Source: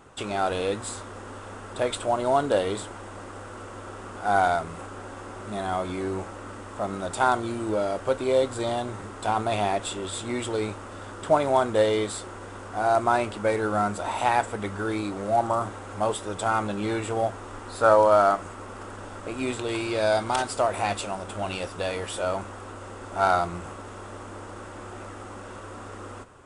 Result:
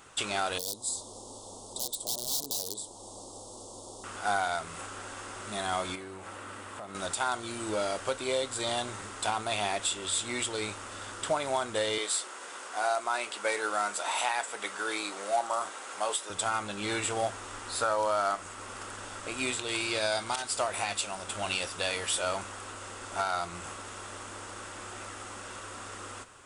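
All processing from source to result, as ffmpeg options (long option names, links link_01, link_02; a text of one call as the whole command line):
ffmpeg -i in.wav -filter_complex "[0:a]asettb=1/sr,asplit=3[link_01][link_02][link_03];[link_01]atrim=end=0.584[link_04];[link_02]atrim=start=0.58:end=4.04,asetpts=PTS-STARTPTS,afade=type=in:duration=0.004:curve=qsin,afade=type=out:start_time=3.456:duration=0.004:curve=qsin,equalizer=frequency=80:width_type=o:width=1.2:gain=-6,aeval=exprs='(mod(11.2*val(0)+1,2)-1)/11.2':channel_layout=same,asuperstop=centerf=1900:order=8:qfactor=0.66[link_05];[link_03]atrim=start=4.036[link_06];[link_04][link_05]acrossfade=duration=0.004:curve1=hsin:curve2=qsin[link_07];[link_07][link_06]acrossfade=duration=0.004:curve1=qsin:curve2=hsin,asettb=1/sr,asplit=3[link_08][link_09][link_10];[link_08]atrim=end=5.954[link_11];[link_09]atrim=start=5.95:end=6.95,asetpts=PTS-STARTPTS,afade=type=in:duration=0.004:curve=qsin,afade=type=out:start_time=0.996:duration=0.004:curve=qsin,highpass=63,equalizer=frequency=6200:width=0.94:gain=-7,acompressor=threshold=-34dB:ratio=5:attack=3.2:release=140:knee=1:detection=peak[link_12];[link_10]atrim=start=6.946[link_13];[link_11][link_12]acrossfade=duration=0.004:curve1=hsin:curve2=qsin[link_14];[link_14][link_13]acrossfade=duration=0.004:curve1=qsin:curve2=hsin,asettb=1/sr,asplit=3[link_15][link_16][link_17];[link_15]atrim=end=11.984[link_18];[link_16]atrim=start=11.98:end=16.3,asetpts=PTS-STARTPTS,afade=type=in:duration=0.004:curve=qsin,afade=type=out:start_time=4.316:duration=0.004:curve=qsin,highpass=400,asplit=2[link_19][link_20];[link_20]adelay=16,volume=-13.5dB[link_21];[link_19][link_21]amix=inputs=2:normalize=0,atrim=end_sample=190512[link_22];[link_17]atrim=start=16.296[link_23];[link_18][link_22]acrossfade=duration=0.004:curve1=hsin:curve2=qsin[link_24];[link_24][link_23]acrossfade=duration=0.004:curve1=qsin:curve2=hsin,tiltshelf=frequency=1400:gain=-8,alimiter=limit=-18dB:level=0:latency=1:release=359" out.wav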